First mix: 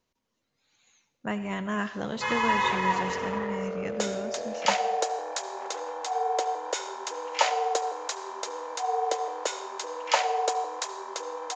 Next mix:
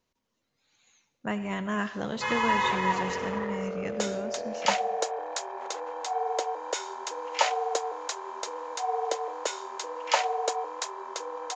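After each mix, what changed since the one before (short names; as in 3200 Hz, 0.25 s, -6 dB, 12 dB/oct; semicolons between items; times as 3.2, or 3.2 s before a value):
background: send off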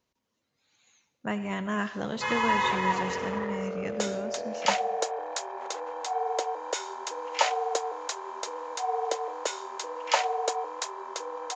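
speech: add HPF 44 Hz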